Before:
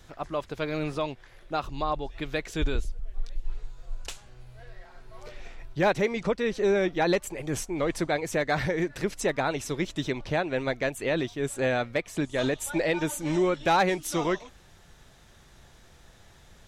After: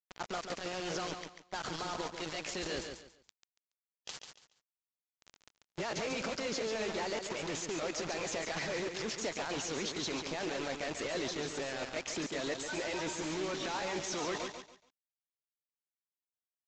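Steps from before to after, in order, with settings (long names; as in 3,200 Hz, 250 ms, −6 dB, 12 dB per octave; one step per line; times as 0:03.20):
pitch glide at a constant tempo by +3 semitones ending unshifted
high-pass filter 220 Hz 12 dB per octave
noise gate −56 dBFS, range −8 dB
parametric band 5,200 Hz +5 dB 0.51 octaves
transient designer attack −2 dB, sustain +10 dB
brickwall limiter −24.5 dBFS, peak gain reduction 13.5 dB
bit reduction 6 bits
downsampling to 16,000 Hz
on a send: repeating echo 141 ms, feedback 27%, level −6.5 dB
on the sum: harmonic and percussive parts rebalanced harmonic −4 dB
level −2.5 dB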